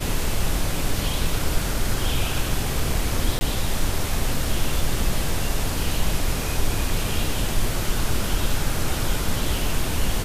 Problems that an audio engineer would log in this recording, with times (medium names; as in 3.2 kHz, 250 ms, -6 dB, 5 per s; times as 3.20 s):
3.39–3.41 s: dropout 20 ms